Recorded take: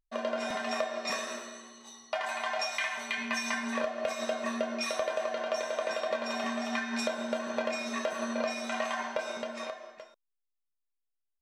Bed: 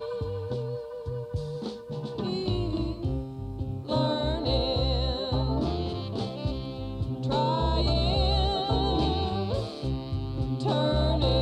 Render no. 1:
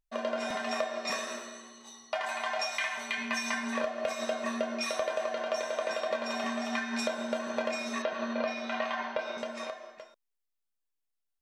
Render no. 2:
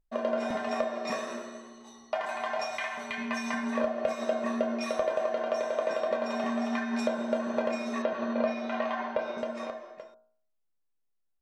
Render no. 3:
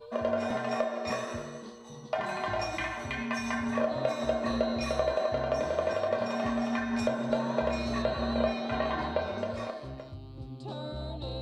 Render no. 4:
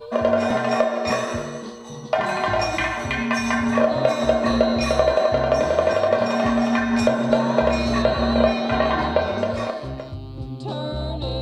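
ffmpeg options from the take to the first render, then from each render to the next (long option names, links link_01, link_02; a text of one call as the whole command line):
ffmpeg -i in.wav -filter_complex "[0:a]asettb=1/sr,asplit=3[link_01][link_02][link_03];[link_01]atrim=end=8.024[link_04];[link_02]atrim=start=8.02:end=9.38,asetpts=PTS-STARTPTS,afade=type=in:duration=0.004:curve=qsin,afade=type=out:start_time=1.356:duration=0.004:curve=qsin,lowpass=frequency=4700:width=0.5412,lowpass=frequency=4700:width=1.3066[link_05];[link_03]atrim=start=9.376[link_06];[link_04][link_05]acrossfade=duration=0.004:curve1=hsin:curve2=qsin[link_07];[link_07][link_06]acrossfade=duration=0.004:curve1=qsin:curve2=hsin" out.wav
ffmpeg -i in.wav -af "tiltshelf=frequency=1300:gain=7,bandreject=frequency=57.5:width_type=h:width=4,bandreject=frequency=115:width_type=h:width=4,bandreject=frequency=172.5:width_type=h:width=4,bandreject=frequency=230:width_type=h:width=4,bandreject=frequency=287.5:width_type=h:width=4,bandreject=frequency=345:width_type=h:width=4,bandreject=frequency=402.5:width_type=h:width=4,bandreject=frequency=460:width_type=h:width=4,bandreject=frequency=517.5:width_type=h:width=4,bandreject=frequency=575:width_type=h:width=4,bandreject=frequency=632.5:width_type=h:width=4,bandreject=frequency=690:width_type=h:width=4,bandreject=frequency=747.5:width_type=h:width=4,bandreject=frequency=805:width_type=h:width=4,bandreject=frequency=862.5:width_type=h:width=4,bandreject=frequency=920:width_type=h:width=4,bandreject=frequency=977.5:width_type=h:width=4,bandreject=frequency=1035:width_type=h:width=4,bandreject=frequency=1092.5:width_type=h:width=4,bandreject=frequency=1150:width_type=h:width=4,bandreject=frequency=1207.5:width_type=h:width=4,bandreject=frequency=1265:width_type=h:width=4,bandreject=frequency=1322.5:width_type=h:width=4,bandreject=frequency=1380:width_type=h:width=4,bandreject=frequency=1437.5:width_type=h:width=4,bandreject=frequency=1495:width_type=h:width=4,bandreject=frequency=1552.5:width_type=h:width=4,bandreject=frequency=1610:width_type=h:width=4" out.wav
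ffmpeg -i in.wav -i bed.wav -filter_complex "[1:a]volume=-13dB[link_01];[0:a][link_01]amix=inputs=2:normalize=0" out.wav
ffmpeg -i in.wav -af "volume=10.5dB" out.wav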